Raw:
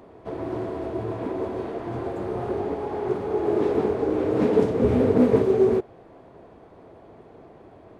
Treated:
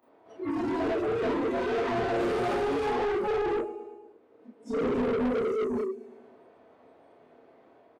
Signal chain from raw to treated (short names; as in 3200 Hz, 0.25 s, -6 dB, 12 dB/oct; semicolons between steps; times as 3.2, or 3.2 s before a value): compressor 16:1, threshold -33 dBFS, peak gain reduction 20.5 dB; 2.17–2.86 high shelf 4100 Hz +8.5 dB; AGC gain up to 4 dB; 3.57–4.63 expander -22 dBFS; Schroeder reverb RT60 0.48 s, combs from 25 ms, DRR -9.5 dB; dynamic EQ 1000 Hz, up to -4 dB, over -40 dBFS, Q 1.2; spectral noise reduction 29 dB; feedback echo 0.112 s, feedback 58%, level -17 dB; overdrive pedal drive 27 dB, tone 3000 Hz, clips at -12.5 dBFS; gain -8.5 dB